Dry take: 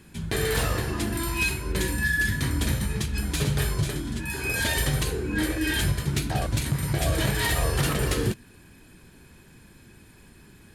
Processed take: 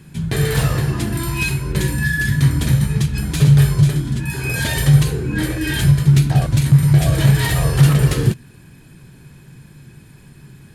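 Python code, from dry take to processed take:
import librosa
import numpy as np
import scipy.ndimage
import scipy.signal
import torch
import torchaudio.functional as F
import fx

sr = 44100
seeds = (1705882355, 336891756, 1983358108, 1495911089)

y = fx.peak_eq(x, sr, hz=140.0, db=15.0, octaves=0.52)
y = y * librosa.db_to_amplitude(3.5)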